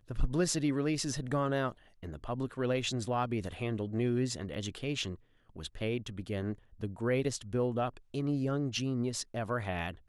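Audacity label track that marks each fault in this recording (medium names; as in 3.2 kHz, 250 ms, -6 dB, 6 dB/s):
4.540000	4.540000	dropout 2.2 ms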